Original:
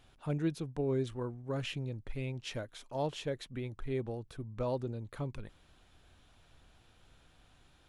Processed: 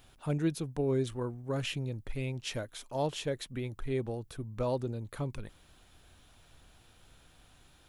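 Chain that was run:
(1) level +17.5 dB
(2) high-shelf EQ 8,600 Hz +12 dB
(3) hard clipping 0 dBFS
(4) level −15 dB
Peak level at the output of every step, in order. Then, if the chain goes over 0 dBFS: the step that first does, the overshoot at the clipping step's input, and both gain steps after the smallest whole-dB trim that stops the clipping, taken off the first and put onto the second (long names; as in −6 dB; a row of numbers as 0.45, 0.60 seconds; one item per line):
−5.0, −5.0, −5.0, −20.0 dBFS
no step passes full scale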